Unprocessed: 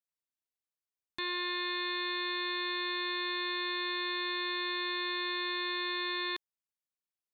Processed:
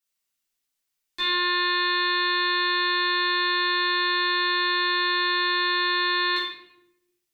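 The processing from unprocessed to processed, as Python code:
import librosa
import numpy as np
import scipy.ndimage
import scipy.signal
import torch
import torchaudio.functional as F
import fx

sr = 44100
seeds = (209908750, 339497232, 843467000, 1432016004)

y = fx.tilt_shelf(x, sr, db=-6.0, hz=1500.0)
y = fx.room_shoebox(y, sr, seeds[0], volume_m3=220.0, walls='mixed', distance_m=3.5)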